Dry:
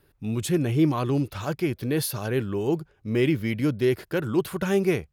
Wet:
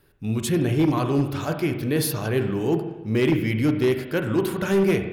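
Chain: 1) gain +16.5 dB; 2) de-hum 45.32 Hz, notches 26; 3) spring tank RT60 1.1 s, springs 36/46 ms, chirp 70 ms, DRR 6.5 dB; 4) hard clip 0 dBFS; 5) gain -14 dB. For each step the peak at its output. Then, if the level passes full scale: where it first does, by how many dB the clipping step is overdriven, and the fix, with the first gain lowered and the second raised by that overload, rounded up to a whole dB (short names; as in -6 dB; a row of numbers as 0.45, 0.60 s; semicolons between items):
+5.0, +5.0, +6.5, 0.0, -14.0 dBFS; step 1, 6.5 dB; step 1 +9.5 dB, step 5 -7 dB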